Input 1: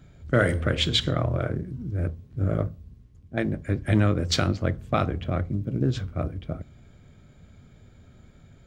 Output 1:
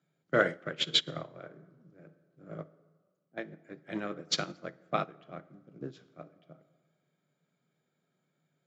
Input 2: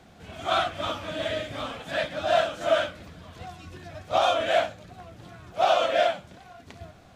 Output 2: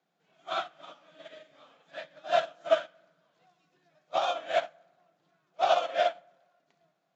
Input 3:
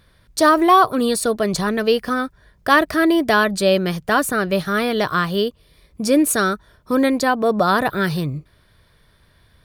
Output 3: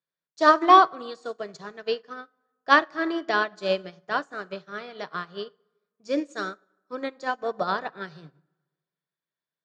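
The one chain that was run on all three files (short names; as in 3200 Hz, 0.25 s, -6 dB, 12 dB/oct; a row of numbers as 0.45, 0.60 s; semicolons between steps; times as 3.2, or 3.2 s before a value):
Chebyshev band-pass 150–7200 Hz, order 5; bell 230 Hz -9.5 dB 0.5 oct; plate-style reverb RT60 1.5 s, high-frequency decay 0.55×, pre-delay 0 ms, DRR 10 dB; upward expander 2.5:1, over -33 dBFS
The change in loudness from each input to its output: -6.5, -3.5, -6.0 LU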